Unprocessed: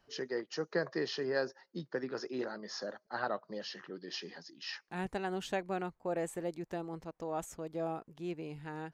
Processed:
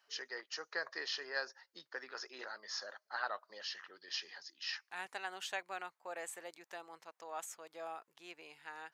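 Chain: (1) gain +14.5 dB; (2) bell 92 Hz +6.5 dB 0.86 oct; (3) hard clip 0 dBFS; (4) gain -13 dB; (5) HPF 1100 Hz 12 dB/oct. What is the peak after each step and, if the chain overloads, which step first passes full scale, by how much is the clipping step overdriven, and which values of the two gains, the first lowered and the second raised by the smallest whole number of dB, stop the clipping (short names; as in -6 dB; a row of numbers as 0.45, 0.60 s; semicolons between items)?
-5.0, -4.5, -4.5, -17.5, -22.0 dBFS; no overload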